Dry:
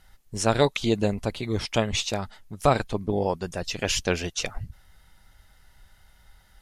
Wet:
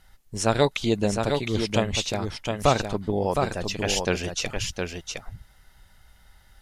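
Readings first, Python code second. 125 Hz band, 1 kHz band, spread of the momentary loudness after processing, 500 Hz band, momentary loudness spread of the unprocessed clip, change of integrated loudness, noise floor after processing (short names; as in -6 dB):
+1.0 dB, +1.0 dB, 9 LU, +1.0 dB, 11 LU, +0.5 dB, -57 dBFS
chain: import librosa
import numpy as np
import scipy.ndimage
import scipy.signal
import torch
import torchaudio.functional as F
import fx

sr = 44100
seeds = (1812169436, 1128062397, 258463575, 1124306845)

y = x + 10.0 ** (-5.0 / 20.0) * np.pad(x, (int(712 * sr / 1000.0), 0))[:len(x)]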